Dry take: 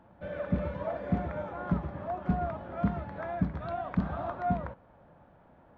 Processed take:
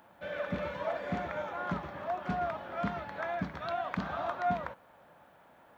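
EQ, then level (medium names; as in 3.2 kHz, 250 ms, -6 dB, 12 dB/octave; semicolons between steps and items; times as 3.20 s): tilt EQ +4 dB/octave; +2.5 dB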